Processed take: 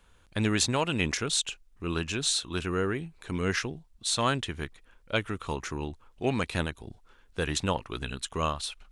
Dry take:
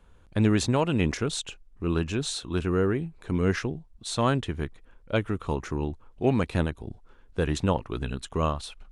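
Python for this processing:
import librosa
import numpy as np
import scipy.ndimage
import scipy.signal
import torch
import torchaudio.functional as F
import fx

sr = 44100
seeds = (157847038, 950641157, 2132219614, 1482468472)

y = fx.tilt_shelf(x, sr, db=-6.0, hz=1200.0)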